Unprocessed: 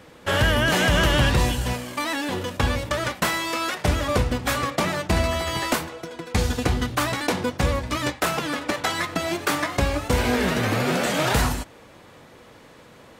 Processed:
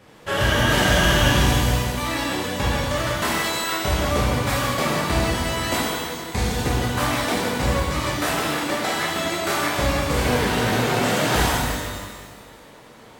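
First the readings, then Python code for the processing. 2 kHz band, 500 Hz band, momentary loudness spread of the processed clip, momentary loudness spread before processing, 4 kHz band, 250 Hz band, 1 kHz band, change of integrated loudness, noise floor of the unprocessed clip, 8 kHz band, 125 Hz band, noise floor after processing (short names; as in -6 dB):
+2.0 dB, +1.5 dB, 7 LU, 8 LU, +3.0 dB, +1.5 dB, +2.5 dB, +2.0 dB, -48 dBFS, +3.5 dB, +2.0 dB, -46 dBFS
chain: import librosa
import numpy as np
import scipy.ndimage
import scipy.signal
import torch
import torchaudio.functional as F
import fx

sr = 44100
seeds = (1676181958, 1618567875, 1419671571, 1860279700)

y = fx.echo_feedback(x, sr, ms=163, feedback_pct=55, wet_db=-11.5)
y = fx.rev_shimmer(y, sr, seeds[0], rt60_s=1.3, semitones=12, shimmer_db=-8, drr_db=-5.5)
y = y * librosa.db_to_amplitude(-5.5)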